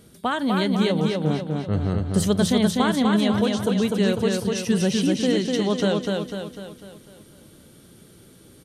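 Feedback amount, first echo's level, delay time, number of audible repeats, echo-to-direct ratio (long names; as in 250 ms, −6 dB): 50%, −3.0 dB, 249 ms, 6, −2.0 dB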